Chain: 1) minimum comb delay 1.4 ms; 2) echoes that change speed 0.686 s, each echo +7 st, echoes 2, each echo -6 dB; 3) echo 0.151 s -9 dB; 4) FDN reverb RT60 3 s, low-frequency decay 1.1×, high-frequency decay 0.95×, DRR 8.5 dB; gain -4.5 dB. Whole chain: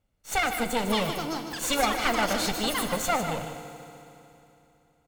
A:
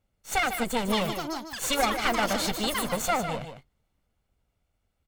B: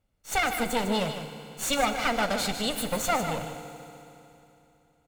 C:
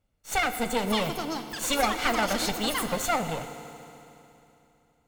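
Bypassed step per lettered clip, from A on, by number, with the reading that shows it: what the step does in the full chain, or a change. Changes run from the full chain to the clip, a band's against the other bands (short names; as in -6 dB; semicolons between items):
4, echo-to-direct -5.5 dB to -9.0 dB; 2, momentary loudness spread change +4 LU; 3, echo-to-direct -5.5 dB to -8.5 dB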